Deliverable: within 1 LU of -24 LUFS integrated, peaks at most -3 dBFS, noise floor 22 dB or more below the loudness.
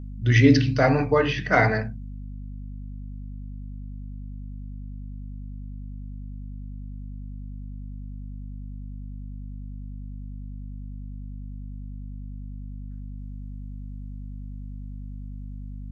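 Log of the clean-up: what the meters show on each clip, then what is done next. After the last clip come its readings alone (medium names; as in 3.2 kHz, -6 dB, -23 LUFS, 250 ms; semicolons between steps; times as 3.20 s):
hum 50 Hz; highest harmonic 250 Hz; hum level -33 dBFS; loudness -20.5 LUFS; peak level -5.5 dBFS; loudness target -24.0 LUFS
-> hum notches 50/100/150/200/250 Hz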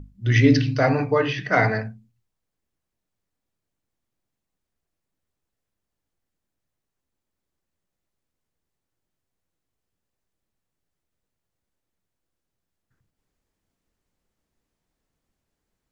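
hum not found; loudness -20.0 LUFS; peak level -5.5 dBFS; loudness target -24.0 LUFS
-> trim -4 dB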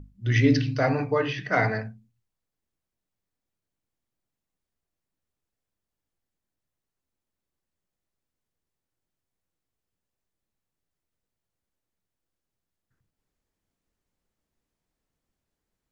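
loudness -24.0 LUFS; peak level -9.5 dBFS; noise floor -87 dBFS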